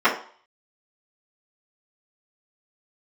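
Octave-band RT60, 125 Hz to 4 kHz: 0.30, 0.40, 0.45, 0.50, 0.45, 0.45 s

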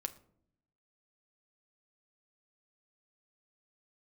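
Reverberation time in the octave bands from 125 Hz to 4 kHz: 1.1, 1.0, 0.75, 0.55, 0.40, 0.35 s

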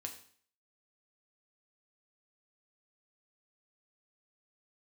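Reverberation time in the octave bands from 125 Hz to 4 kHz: 0.55, 0.55, 0.50, 0.50, 0.55, 0.50 s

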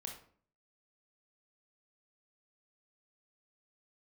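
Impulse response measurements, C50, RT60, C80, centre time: 6.0 dB, 0.50 s, 10.5 dB, 26 ms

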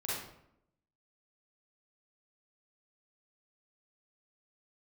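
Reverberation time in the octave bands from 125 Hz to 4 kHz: 0.90, 0.95, 0.80, 0.70, 0.60, 0.50 s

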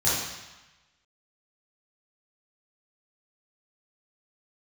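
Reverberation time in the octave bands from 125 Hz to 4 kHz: 1.1, 1.0, 0.95, 1.2, 1.2, 1.1 s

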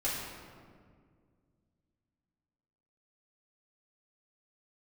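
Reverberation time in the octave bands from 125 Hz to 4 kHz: 3.0, 2.8, 2.2, 1.7, 1.5, 1.1 s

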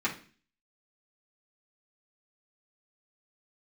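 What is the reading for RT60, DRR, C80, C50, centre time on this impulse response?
0.40 s, -7.5 dB, 17.0 dB, 11.0 dB, 15 ms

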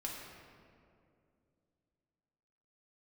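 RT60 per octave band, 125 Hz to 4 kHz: 3.2, 3.2, 2.8, 2.1, 1.8, 1.3 s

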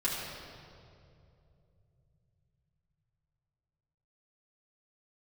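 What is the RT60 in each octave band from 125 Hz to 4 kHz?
5.7, 3.9, 3.1, 2.2, 1.8, 1.7 s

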